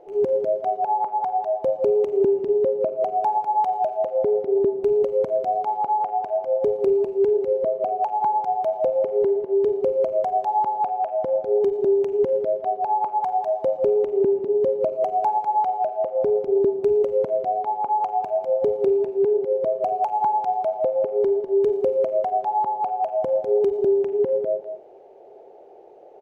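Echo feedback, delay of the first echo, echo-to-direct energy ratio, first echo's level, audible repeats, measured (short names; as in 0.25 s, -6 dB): no steady repeat, 0.199 s, -8.5 dB, -8.5 dB, 1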